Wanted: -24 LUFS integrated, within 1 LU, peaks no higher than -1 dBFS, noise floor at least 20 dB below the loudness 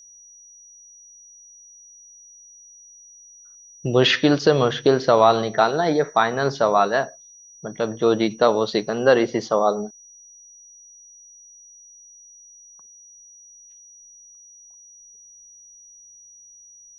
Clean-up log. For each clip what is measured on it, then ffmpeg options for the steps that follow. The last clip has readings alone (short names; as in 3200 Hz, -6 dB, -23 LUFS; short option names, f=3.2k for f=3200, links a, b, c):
steady tone 5800 Hz; tone level -45 dBFS; loudness -19.5 LUFS; peak -2.5 dBFS; loudness target -24.0 LUFS
-> -af "bandreject=f=5.8k:w=30"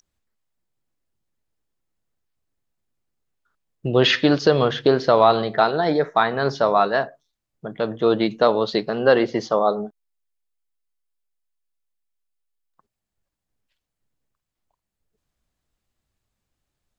steady tone none; loudness -19.5 LUFS; peak -2.5 dBFS; loudness target -24.0 LUFS
-> -af "volume=-4.5dB"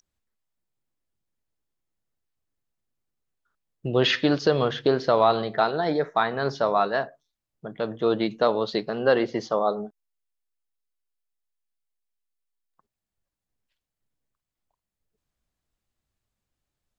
loudness -24.0 LUFS; peak -7.0 dBFS; noise floor -87 dBFS